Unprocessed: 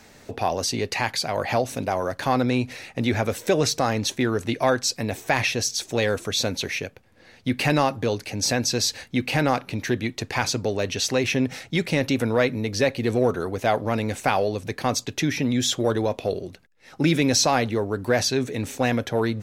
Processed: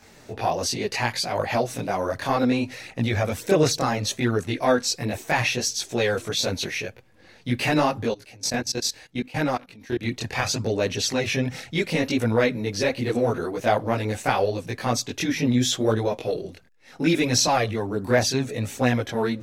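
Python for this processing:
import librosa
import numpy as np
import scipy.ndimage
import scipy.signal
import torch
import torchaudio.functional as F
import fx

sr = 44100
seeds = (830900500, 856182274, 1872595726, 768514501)

y = fx.level_steps(x, sr, step_db=23, at=(8.05, 10.01))
y = fx.chorus_voices(y, sr, voices=2, hz=0.69, base_ms=21, depth_ms=4.7, mix_pct=60)
y = F.gain(torch.from_numpy(y), 2.5).numpy()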